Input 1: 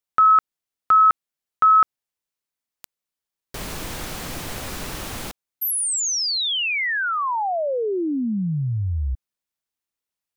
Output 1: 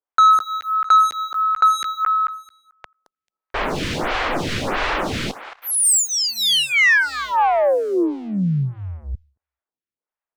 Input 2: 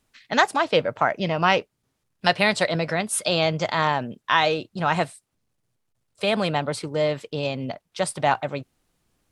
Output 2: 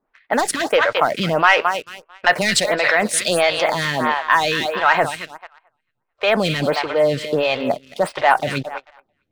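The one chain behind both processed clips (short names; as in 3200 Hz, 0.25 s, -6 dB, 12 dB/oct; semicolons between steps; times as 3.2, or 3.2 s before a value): thinning echo 0.22 s, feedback 38%, high-pass 930 Hz, level -9.5 dB; low-pass opened by the level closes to 1500 Hz, open at -16.5 dBFS; dynamic EQ 1800 Hz, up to +6 dB, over -34 dBFS, Q 1.8; in parallel at 0 dB: negative-ratio compressor -29 dBFS, ratio -1; on the sum: low shelf 260 Hz -8 dB; sample leveller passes 2; photocell phaser 1.5 Hz; gain -1 dB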